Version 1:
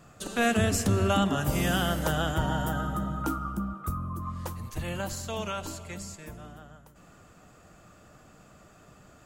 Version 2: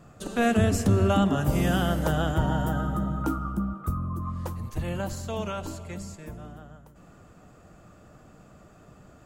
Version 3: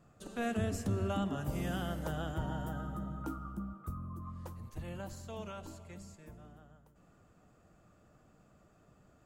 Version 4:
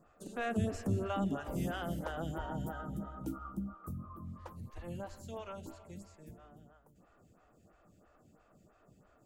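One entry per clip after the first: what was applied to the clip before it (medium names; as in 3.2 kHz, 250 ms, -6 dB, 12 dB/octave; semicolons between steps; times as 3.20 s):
tilt shelf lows +4 dB, about 1.1 kHz
feedback comb 110 Hz, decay 1.9 s, mix 40%; trim -8 dB
lamp-driven phase shifter 3 Hz; trim +2.5 dB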